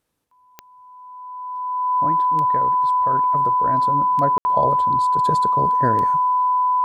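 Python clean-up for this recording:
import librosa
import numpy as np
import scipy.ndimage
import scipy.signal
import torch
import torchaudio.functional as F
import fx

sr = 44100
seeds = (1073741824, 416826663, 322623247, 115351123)

y = fx.fix_declick_ar(x, sr, threshold=10.0)
y = fx.notch(y, sr, hz=1000.0, q=30.0)
y = fx.fix_ambience(y, sr, seeds[0], print_start_s=0.0, print_end_s=0.5, start_s=4.38, end_s=4.45)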